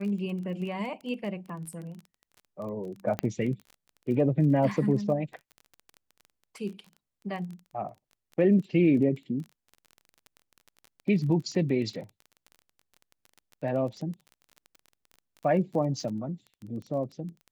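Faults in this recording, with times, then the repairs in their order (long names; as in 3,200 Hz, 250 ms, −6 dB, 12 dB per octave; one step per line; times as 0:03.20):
surface crackle 22 per second −37 dBFS
0:03.19: click −15 dBFS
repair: click removal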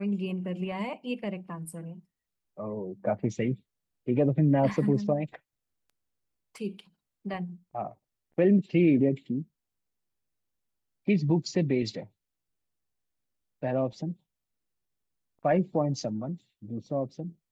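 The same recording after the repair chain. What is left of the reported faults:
none of them is left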